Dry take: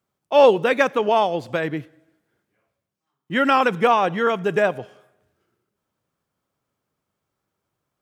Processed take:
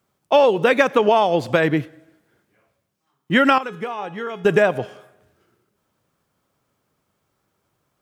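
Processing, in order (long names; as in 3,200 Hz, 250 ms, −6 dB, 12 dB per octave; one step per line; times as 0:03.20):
downward compressor 10 to 1, threshold −19 dBFS, peak gain reduction 11.5 dB
0:03.58–0:04.45: tuned comb filter 420 Hz, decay 0.52 s, mix 80%
level +8 dB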